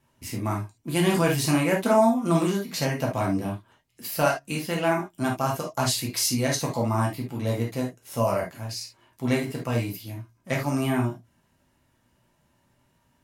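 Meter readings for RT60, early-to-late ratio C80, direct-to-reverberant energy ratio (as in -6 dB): not exponential, 24.5 dB, -2.5 dB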